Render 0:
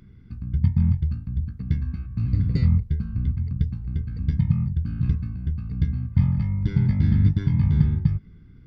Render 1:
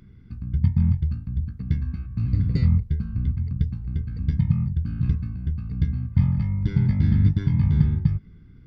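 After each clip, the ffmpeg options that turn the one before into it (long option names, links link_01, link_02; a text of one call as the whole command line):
ffmpeg -i in.wav -af anull out.wav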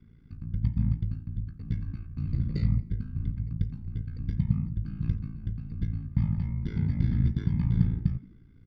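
ffmpeg -i in.wav -filter_complex "[0:a]aeval=exprs='val(0)*sin(2*PI*28*n/s)':channel_layout=same,bandreject=frequency=217.7:width_type=h:width=4,bandreject=frequency=435.4:width_type=h:width=4,bandreject=frequency=653.1:width_type=h:width=4,bandreject=frequency=870.8:width_type=h:width=4,bandreject=frequency=1088.5:width_type=h:width=4,bandreject=frequency=1306.2:width_type=h:width=4,bandreject=frequency=1523.9:width_type=h:width=4,bandreject=frequency=1741.6:width_type=h:width=4,bandreject=frequency=1959.3:width_type=h:width=4,bandreject=frequency=2177:width_type=h:width=4,bandreject=frequency=2394.7:width_type=h:width=4,bandreject=frequency=2612.4:width_type=h:width=4,bandreject=frequency=2830.1:width_type=h:width=4,bandreject=frequency=3047.8:width_type=h:width=4,asplit=4[link_01][link_02][link_03][link_04];[link_02]adelay=86,afreqshift=55,volume=-23dB[link_05];[link_03]adelay=172,afreqshift=110,volume=-30.7dB[link_06];[link_04]adelay=258,afreqshift=165,volume=-38.5dB[link_07];[link_01][link_05][link_06][link_07]amix=inputs=4:normalize=0,volume=-3.5dB" out.wav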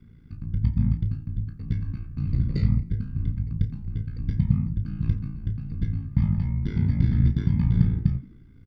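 ffmpeg -i in.wav -filter_complex "[0:a]asplit=2[link_01][link_02];[link_02]adelay=30,volume=-10.5dB[link_03];[link_01][link_03]amix=inputs=2:normalize=0,volume=4dB" out.wav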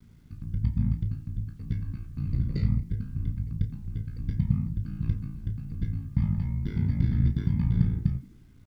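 ffmpeg -i in.wav -af "acrusher=bits=10:mix=0:aa=0.000001,volume=-3.5dB" out.wav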